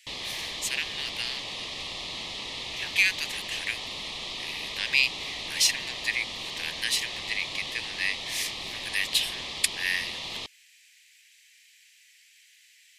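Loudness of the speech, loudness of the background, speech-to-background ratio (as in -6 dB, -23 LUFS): -28.5 LUFS, -34.0 LUFS, 5.5 dB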